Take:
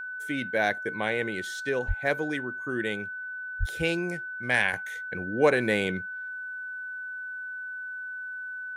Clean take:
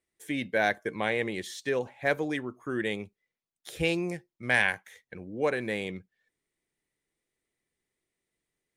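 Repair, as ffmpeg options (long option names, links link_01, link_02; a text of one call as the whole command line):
ffmpeg -i in.wav -filter_complex "[0:a]bandreject=frequency=1500:width=30,asplit=3[link_01][link_02][link_03];[link_01]afade=type=out:start_time=1.87:duration=0.02[link_04];[link_02]highpass=frequency=140:width=0.5412,highpass=frequency=140:width=1.3066,afade=type=in:start_time=1.87:duration=0.02,afade=type=out:start_time=1.99:duration=0.02[link_05];[link_03]afade=type=in:start_time=1.99:duration=0.02[link_06];[link_04][link_05][link_06]amix=inputs=3:normalize=0,asplit=3[link_07][link_08][link_09];[link_07]afade=type=out:start_time=3.59:duration=0.02[link_10];[link_08]highpass=frequency=140:width=0.5412,highpass=frequency=140:width=1.3066,afade=type=in:start_time=3.59:duration=0.02,afade=type=out:start_time=3.71:duration=0.02[link_11];[link_09]afade=type=in:start_time=3.71:duration=0.02[link_12];[link_10][link_11][link_12]amix=inputs=3:normalize=0,asetnsamples=nb_out_samples=441:pad=0,asendcmd='4.73 volume volume -6.5dB',volume=0dB" out.wav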